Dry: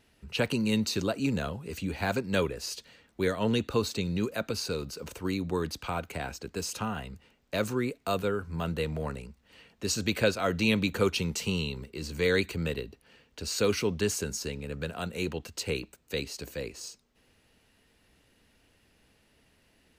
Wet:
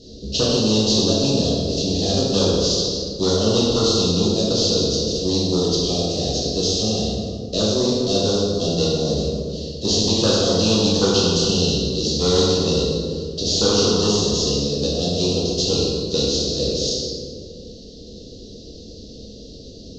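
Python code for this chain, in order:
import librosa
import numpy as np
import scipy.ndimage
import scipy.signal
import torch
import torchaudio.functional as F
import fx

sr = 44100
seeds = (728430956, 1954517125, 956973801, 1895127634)

y = fx.cvsd(x, sr, bps=32000)
y = scipy.signal.sosfilt(scipy.signal.ellip(3, 1.0, 40, [500.0, 4100.0], 'bandstop', fs=sr, output='sos'), y)
y = fx.low_shelf(y, sr, hz=310.0, db=-5.5)
y = 10.0 ** (-17.5 / 20.0) * np.tanh(y / 10.0 ** (-17.5 / 20.0))
y = fx.air_absorb(y, sr, metres=82.0)
y = fx.rev_plate(y, sr, seeds[0], rt60_s=1.6, hf_ratio=0.65, predelay_ms=0, drr_db=-7.5)
y = fx.spectral_comp(y, sr, ratio=2.0)
y = y * librosa.db_to_amplitude(5.5)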